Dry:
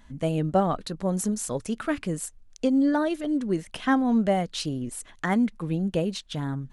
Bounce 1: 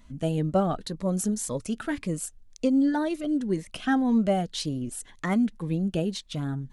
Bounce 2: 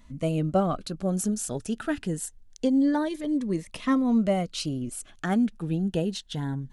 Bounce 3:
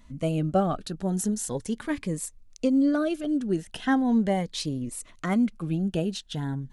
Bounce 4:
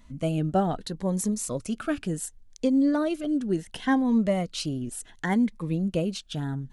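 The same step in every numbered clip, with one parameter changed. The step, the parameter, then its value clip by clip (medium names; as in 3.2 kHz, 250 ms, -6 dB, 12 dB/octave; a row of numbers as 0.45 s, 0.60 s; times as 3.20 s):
Shepard-style phaser, rate: 1.9 Hz, 0.25 Hz, 0.4 Hz, 0.69 Hz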